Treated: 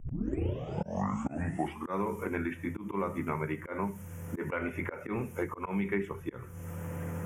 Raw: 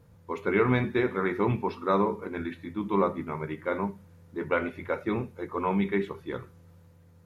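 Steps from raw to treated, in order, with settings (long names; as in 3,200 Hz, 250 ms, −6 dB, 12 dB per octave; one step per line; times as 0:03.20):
turntable start at the beginning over 1.99 s
high-shelf EQ 2,700 Hz +10.5 dB
volume swells 352 ms
Butterworth band-reject 4,200 Hz, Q 1.3
multiband upward and downward compressor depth 100%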